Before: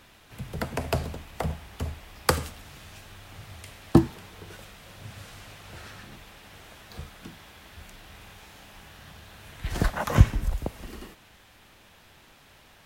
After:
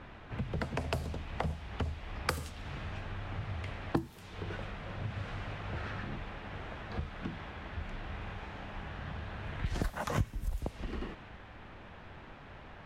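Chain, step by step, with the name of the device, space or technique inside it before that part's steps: level-controlled noise filter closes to 1.7 kHz, open at -22 dBFS; ASMR close-microphone chain (bass shelf 180 Hz +3.5 dB; compression 4:1, threshold -40 dBFS, peak gain reduction 27.5 dB; treble shelf 9.5 kHz +5.5 dB); trim +6 dB

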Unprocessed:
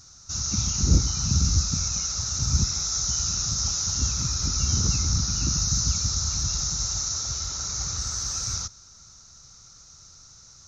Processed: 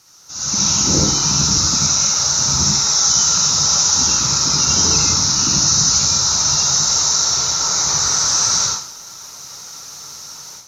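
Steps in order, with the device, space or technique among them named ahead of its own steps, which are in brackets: filmed off a television (band-pass 250–7200 Hz; peaking EQ 910 Hz +8 dB 0.35 oct; reverberation RT60 0.50 s, pre-delay 59 ms, DRR -3 dB; white noise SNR 31 dB; level rider gain up to 13 dB; trim -1 dB; AAC 64 kbps 32 kHz)

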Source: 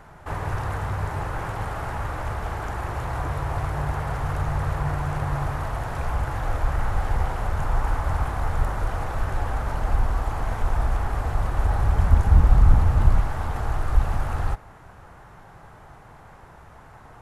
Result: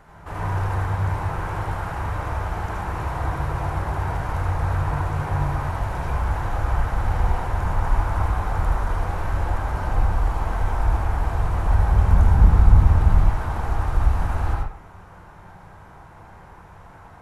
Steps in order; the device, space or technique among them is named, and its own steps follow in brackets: bathroom (reverberation RT60 0.50 s, pre-delay 73 ms, DRR -3 dB); trim -3.5 dB

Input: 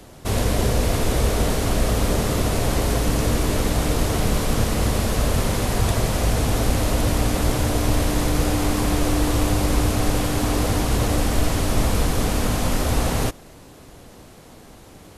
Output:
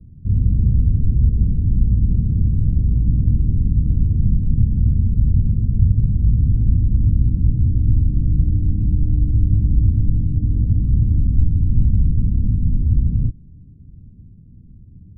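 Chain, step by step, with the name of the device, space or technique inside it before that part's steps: the neighbour's flat through the wall (low-pass 190 Hz 24 dB/octave; peaking EQ 88 Hz +3.5 dB 0.7 oct); trim +5.5 dB

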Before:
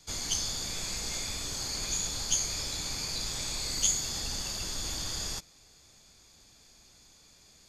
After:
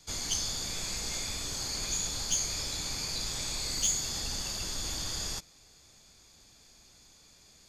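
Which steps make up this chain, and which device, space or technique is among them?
saturation between pre-emphasis and de-emphasis (treble shelf 12 kHz +6.5 dB; saturation -18 dBFS, distortion -21 dB; treble shelf 12 kHz -6.5 dB)

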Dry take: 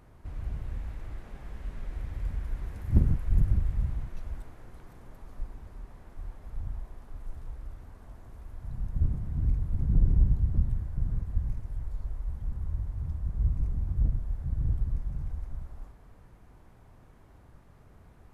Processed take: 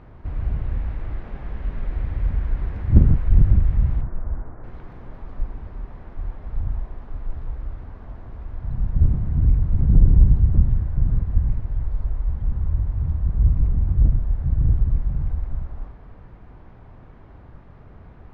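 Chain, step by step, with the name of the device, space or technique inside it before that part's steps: parallel distortion (in parallel at -11 dB: hard clipper -25.5 dBFS, distortion -7 dB); 4.01–4.64 s: on the sum: low-pass 1.6 kHz 24 dB/octave; distance through air 280 m; trim +8.5 dB

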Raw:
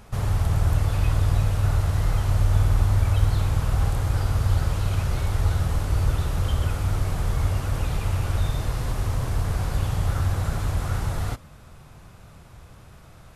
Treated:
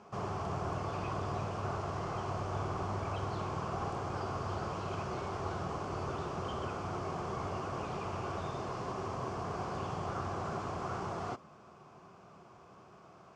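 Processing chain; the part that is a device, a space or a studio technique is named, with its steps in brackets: full-range speaker at full volume (loudspeaker Doppler distortion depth 0.17 ms; cabinet simulation 190–6300 Hz, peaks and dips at 190 Hz +5 dB, 380 Hz +10 dB, 710 Hz +7 dB, 1.1 kHz +9 dB, 1.9 kHz -6 dB, 3.8 kHz -9 dB); trim -7.5 dB

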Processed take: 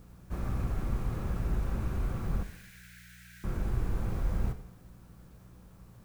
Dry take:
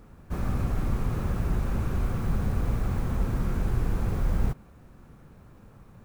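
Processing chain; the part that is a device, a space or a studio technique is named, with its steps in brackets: 2.43–3.44 s: steep high-pass 1.5 kHz 96 dB/octave; two-slope reverb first 0.91 s, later 3 s, from -28 dB, DRR 9 dB; video cassette with head-switching buzz (mains buzz 60 Hz, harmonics 3, -50 dBFS -1 dB/octave; white noise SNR 38 dB); trim -6 dB

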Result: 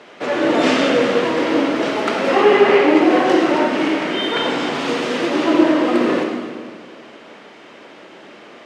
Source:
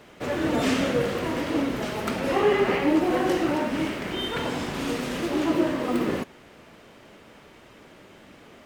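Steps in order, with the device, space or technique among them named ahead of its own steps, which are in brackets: supermarket ceiling speaker (band-pass 290–5400 Hz; reverberation RT60 1.8 s, pre-delay 54 ms, DRR 3 dB); trim +8.5 dB

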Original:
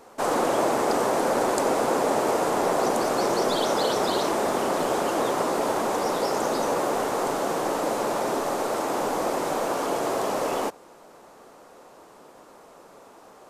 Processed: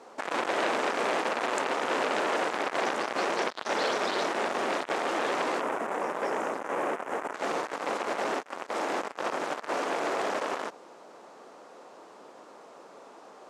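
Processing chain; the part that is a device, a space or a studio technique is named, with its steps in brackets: public-address speaker with an overloaded transformer (transformer saturation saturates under 2.7 kHz; band-pass 220–6600 Hz); 5.61–7.34 s: peaking EQ 4.3 kHz -14.5 dB 1.1 oct

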